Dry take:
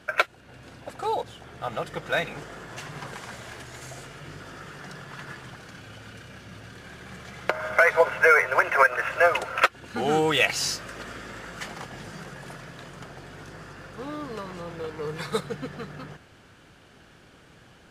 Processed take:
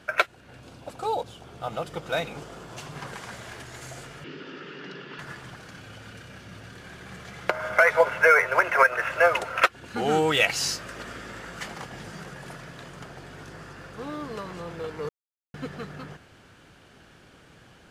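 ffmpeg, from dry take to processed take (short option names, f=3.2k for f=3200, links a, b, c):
-filter_complex "[0:a]asettb=1/sr,asplit=3[a][b][c];[a]atrim=end=0.604[d];[b]atrim=start=0.6:end=2.96,asetpts=PTS-STARTPTS,afade=t=in:d=0.004:c=qsin,afade=t=out:st=2.356:d=0.004:c=qsin,equalizer=f=1.8k:t=o:w=0.57:g=-8.5[e];[c]atrim=start=2.956[f];[d][e]acrossfade=d=0.004:c1=hsin:c2=qsin[g];[g][f]acrossfade=d=0.004:c1=qsin:c2=hsin,asettb=1/sr,asplit=3[h][i][j];[h]atrim=end=4.244[k];[i]atrim=start=4.24:end=5.19,asetpts=PTS-STARTPTS,afade=t=in:d=0.004:c=qsin,afade=t=out:st=0.946:d=0.004:c=qsin,highpass=f=160:w=0.5412,highpass=f=160:w=1.3066,equalizer=f=280:t=q:w=4:g=7,equalizer=f=400:t=q:w=4:g=8,equalizer=f=710:t=q:w=4:g=-10,equalizer=f=1.1k:t=q:w=4:g=-3,equalizer=f=2.8k:t=q:w=4:g=7,lowpass=f=4.9k:w=0.5412,lowpass=f=4.9k:w=1.3066[l];[j]atrim=start=5.186[m];[k][l]acrossfade=d=0.004:c1=hsin:c2=qsin[n];[n][m]acrossfade=d=0.004:c1=qsin:c2=hsin,asplit=3[o][p][q];[o]atrim=end=15.09,asetpts=PTS-STARTPTS,afade=t=out:st=15.086:d=0.004:c=hsin[r];[p]atrim=start=15.09:end=15.54,asetpts=PTS-STARTPTS,volume=0[s];[q]atrim=start=15.54,asetpts=PTS-STARTPTS,afade=t=in:d=0.004:c=hsin[t];[r][s][t]concat=n=3:v=0:a=1"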